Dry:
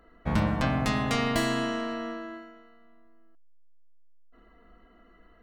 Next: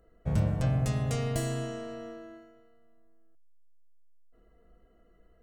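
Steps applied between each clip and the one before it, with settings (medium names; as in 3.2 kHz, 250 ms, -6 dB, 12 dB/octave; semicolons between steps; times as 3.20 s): graphic EQ 125/250/500/1000/2000/4000/8000 Hz +10/-10/+5/-11/-7/-8/+5 dB; trim -3 dB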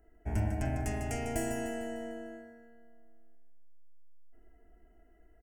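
static phaser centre 780 Hz, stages 8; on a send: feedback delay 150 ms, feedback 50%, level -8 dB; on the sum: trim +1.5 dB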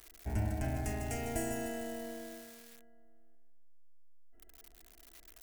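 zero-crossing glitches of -37 dBFS; trim -2.5 dB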